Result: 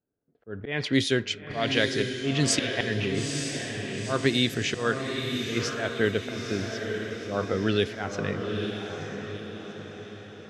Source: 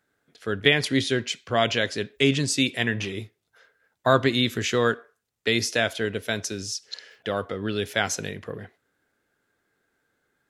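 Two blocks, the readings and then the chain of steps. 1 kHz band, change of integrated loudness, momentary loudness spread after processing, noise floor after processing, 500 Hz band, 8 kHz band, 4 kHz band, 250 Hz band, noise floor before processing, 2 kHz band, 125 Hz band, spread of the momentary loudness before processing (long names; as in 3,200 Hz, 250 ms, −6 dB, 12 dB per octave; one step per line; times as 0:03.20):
−5.5 dB, −3.0 dB, 13 LU, −46 dBFS, −2.0 dB, −2.0 dB, −2.5 dB, −0.5 dB, −76 dBFS, −3.5 dB, 0.0 dB, 13 LU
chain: volume swells 205 ms
low-pass that shuts in the quiet parts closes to 510 Hz, open at −20 dBFS
automatic gain control gain up to 12.5 dB
feedback delay with all-pass diffusion 905 ms, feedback 48%, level −5 dB
level −7.5 dB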